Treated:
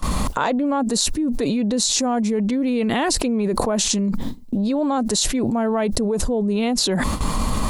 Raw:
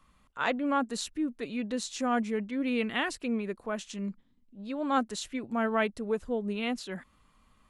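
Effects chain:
noise gate with hold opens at −55 dBFS
flat-topped bell 2,000 Hz −9 dB
envelope flattener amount 100%
level +5 dB

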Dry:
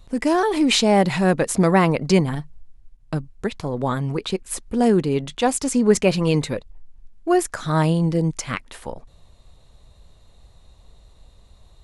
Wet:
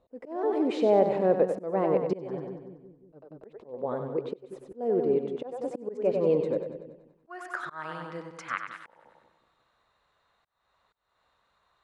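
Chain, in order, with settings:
echo with a time of its own for lows and highs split 360 Hz, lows 180 ms, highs 95 ms, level −7.5 dB
volume swells 315 ms
band-pass filter sweep 500 Hz → 1,400 Hz, 0:06.87–0:07.37

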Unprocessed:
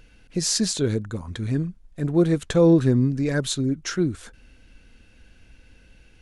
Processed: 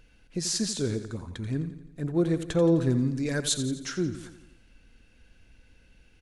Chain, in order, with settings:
0:02.90–0:03.54: high-shelf EQ 3,000 Hz +9 dB
on a send: repeating echo 86 ms, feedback 55%, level −12 dB
on the sum: level −6 dB

